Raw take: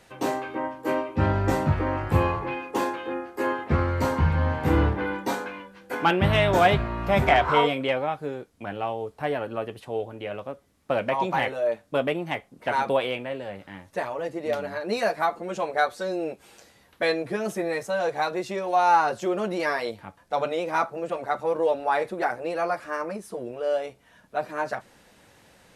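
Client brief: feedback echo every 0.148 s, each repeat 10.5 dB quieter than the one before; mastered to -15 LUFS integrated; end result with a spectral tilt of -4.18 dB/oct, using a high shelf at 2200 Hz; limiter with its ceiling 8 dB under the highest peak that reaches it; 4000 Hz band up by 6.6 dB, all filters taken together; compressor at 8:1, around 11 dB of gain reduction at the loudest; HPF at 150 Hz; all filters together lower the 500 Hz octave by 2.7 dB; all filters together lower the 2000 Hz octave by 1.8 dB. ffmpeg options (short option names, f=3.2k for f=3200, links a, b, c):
-af "highpass=150,equalizer=f=500:t=o:g=-3.5,equalizer=f=2k:t=o:g=-7,highshelf=f=2.2k:g=6.5,equalizer=f=4k:t=o:g=5.5,acompressor=threshold=-27dB:ratio=8,alimiter=limit=-24dB:level=0:latency=1,aecho=1:1:148|296|444:0.299|0.0896|0.0269,volume=19.5dB"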